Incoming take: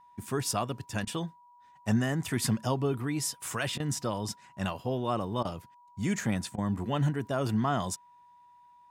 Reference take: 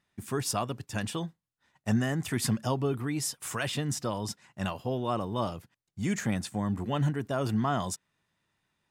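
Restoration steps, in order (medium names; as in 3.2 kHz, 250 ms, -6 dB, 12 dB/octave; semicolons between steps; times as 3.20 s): band-stop 970 Hz, Q 30; interpolate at 1.05/3.78/5.43/6.56 s, 18 ms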